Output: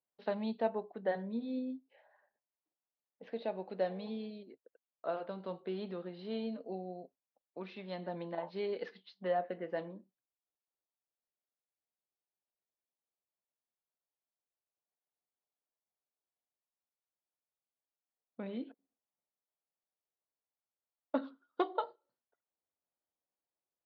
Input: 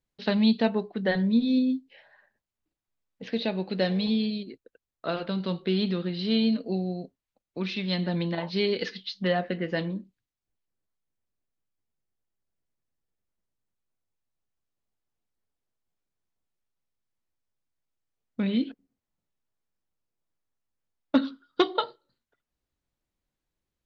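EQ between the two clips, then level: band-pass filter 710 Hz, Q 1.4; -4.0 dB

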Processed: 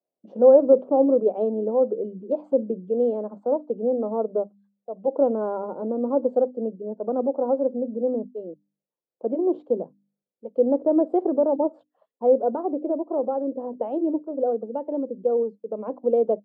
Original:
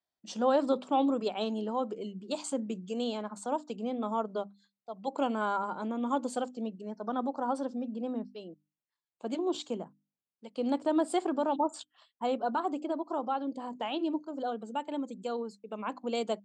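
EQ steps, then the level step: high-pass 140 Hz; resonant low-pass 520 Hz, resonance Q 3.7; hum notches 50/100/150/200 Hz; +4.0 dB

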